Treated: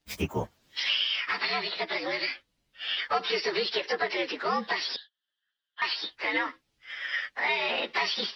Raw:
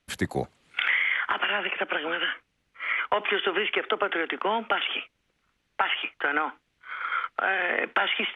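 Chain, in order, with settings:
partials spread apart or drawn together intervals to 118%
0:04.96–0:05.82: pair of resonant band-passes 2,300 Hz, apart 0.93 octaves
level +1.5 dB

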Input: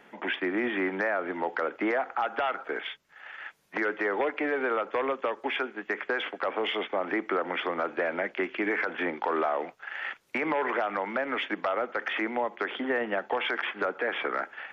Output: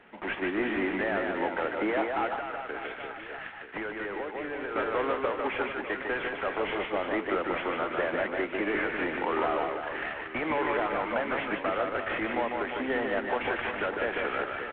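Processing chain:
variable-slope delta modulation 16 kbit/s
reverse bouncing-ball delay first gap 150 ms, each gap 1.3×, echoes 5
0:02.34–0:04.76: downward compressor 6 to 1, threshold −31 dBFS, peak gain reduction 9 dB
level −1 dB

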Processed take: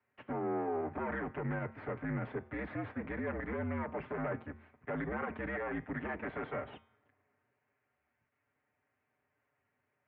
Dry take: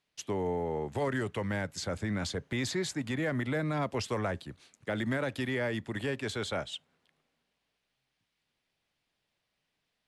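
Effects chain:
lower of the sound and its delayed copy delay 6.2 ms
in parallel at −0.5 dB: output level in coarse steps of 17 dB
on the sum: brickwall limiter −29 dBFS, peak gain reduction 11.5 dB
hum removal 141.7 Hz, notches 38
single-sideband voice off tune −59 Hz 160–2,200 Hz
level +1 dB

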